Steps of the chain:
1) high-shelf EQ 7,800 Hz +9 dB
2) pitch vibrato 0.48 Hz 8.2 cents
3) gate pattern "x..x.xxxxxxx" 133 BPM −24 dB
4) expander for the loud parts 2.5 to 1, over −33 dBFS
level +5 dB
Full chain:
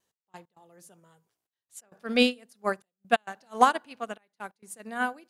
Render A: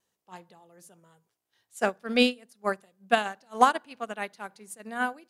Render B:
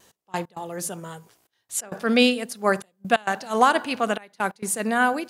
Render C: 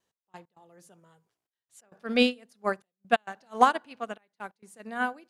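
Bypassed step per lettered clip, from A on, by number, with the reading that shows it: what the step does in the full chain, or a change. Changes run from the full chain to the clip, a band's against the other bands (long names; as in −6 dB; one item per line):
3, change in momentary loudness spread −4 LU
4, 8 kHz band +8.0 dB
1, 8 kHz band −5.5 dB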